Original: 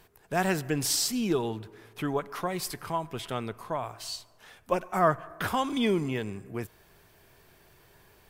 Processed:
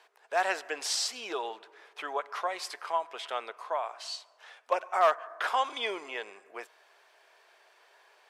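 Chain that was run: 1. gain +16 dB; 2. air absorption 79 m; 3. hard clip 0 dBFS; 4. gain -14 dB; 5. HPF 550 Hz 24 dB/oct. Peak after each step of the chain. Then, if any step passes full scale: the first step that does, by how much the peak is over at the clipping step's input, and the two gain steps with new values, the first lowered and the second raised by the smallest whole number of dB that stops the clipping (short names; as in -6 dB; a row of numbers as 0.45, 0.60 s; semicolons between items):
+6.0, +5.5, 0.0, -14.0, -13.0 dBFS; step 1, 5.5 dB; step 1 +10 dB, step 4 -8 dB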